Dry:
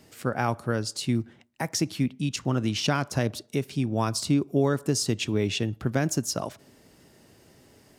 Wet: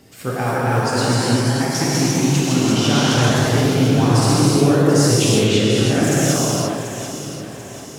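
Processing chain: 3.28–3.97 s: bass shelf 170 Hz +8.5 dB; in parallel at -1.5 dB: compression, threshold -32 dBFS, peak gain reduction 13.5 dB; on the sum: phaser 0.93 Hz, delay 4.5 ms, feedback 24%; ever faster or slower copies 296 ms, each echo +1 st, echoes 3; on a send: echo whose repeats swap between lows and highs 369 ms, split 1.2 kHz, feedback 67%, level -7 dB; on the sum: gated-style reverb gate 380 ms flat, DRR -6.5 dB; trim -2 dB

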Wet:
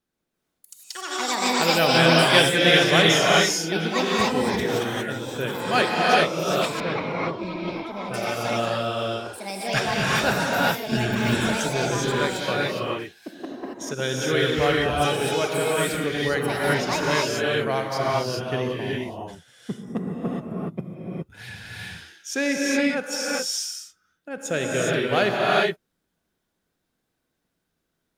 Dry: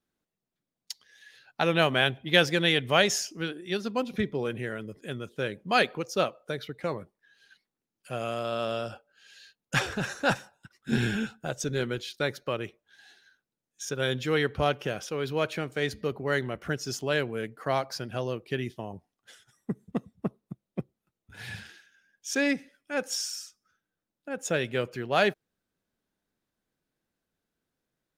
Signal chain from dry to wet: gated-style reverb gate 440 ms rising, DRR -4.5 dB; ever faster or slower copies 120 ms, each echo +7 st, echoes 2, each echo -6 dB; 6.80–8.14 s: distance through air 280 m; trim +1 dB

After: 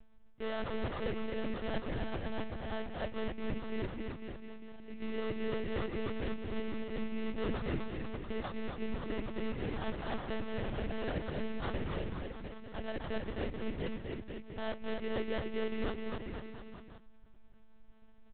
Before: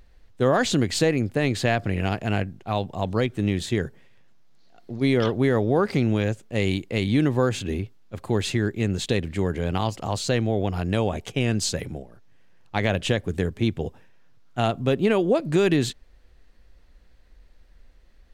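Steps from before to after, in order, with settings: reverse; compression 8:1, threshold -29 dBFS, peak gain reduction 14 dB; reverse; sample-rate reducer 2.4 kHz, jitter 20%; bouncing-ball echo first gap 260 ms, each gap 0.9×, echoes 5; reverberation RT60 1.5 s, pre-delay 4 ms, DRR 18.5 dB; monotone LPC vocoder at 8 kHz 220 Hz; trim -4.5 dB

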